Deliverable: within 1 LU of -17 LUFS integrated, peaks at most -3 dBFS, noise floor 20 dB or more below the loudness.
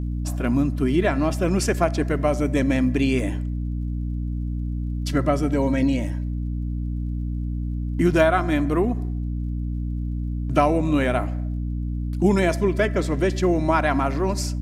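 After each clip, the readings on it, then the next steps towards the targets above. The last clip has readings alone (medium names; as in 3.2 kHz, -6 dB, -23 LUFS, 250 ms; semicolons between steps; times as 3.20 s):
tick rate 36 per s; hum 60 Hz; highest harmonic 300 Hz; hum level -24 dBFS; loudness -23.0 LUFS; peak level -4.5 dBFS; loudness target -17.0 LUFS
-> de-click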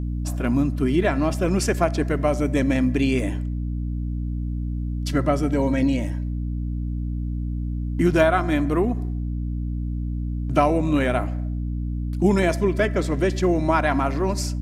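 tick rate 0.14 per s; hum 60 Hz; highest harmonic 300 Hz; hum level -24 dBFS
-> hum notches 60/120/180/240/300 Hz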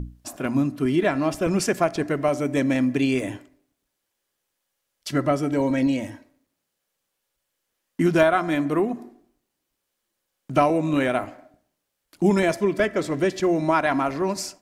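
hum not found; loudness -23.0 LUFS; peak level -4.5 dBFS; loudness target -17.0 LUFS
-> trim +6 dB; peak limiter -3 dBFS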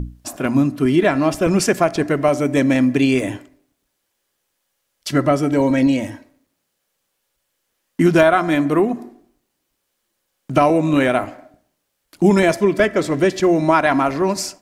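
loudness -17.0 LUFS; peak level -3.0 dBFS; noise floor -73 dBFS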